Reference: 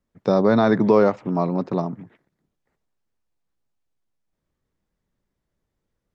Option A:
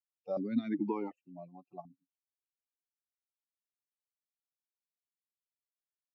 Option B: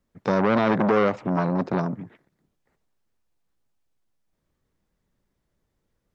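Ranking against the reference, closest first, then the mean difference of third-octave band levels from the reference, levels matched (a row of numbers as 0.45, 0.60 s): B, A; 4.0, 10.0 dB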